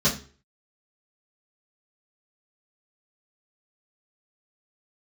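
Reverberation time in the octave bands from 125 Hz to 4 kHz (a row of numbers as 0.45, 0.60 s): 0.45, 0.40, 0.45, 0.40, 0.35, 0.35 s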